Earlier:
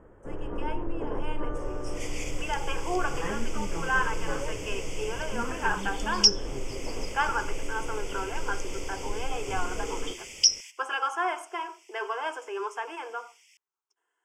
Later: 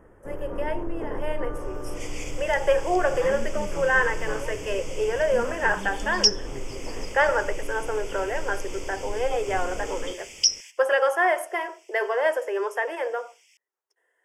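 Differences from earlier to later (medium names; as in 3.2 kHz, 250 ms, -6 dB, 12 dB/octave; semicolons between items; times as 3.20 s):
speech: remove static phaser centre 2.8 kHz, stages 8; first sound: remove distance through air 220 m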